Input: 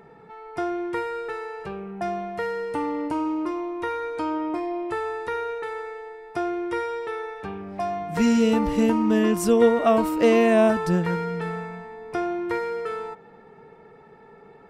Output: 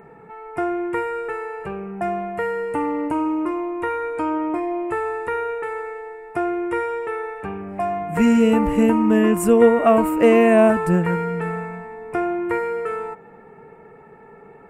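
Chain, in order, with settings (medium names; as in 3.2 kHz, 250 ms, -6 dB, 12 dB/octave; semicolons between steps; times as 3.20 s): high-order bell 4.5 kHz -14.5 dB 1.1 oct; trim +4 dB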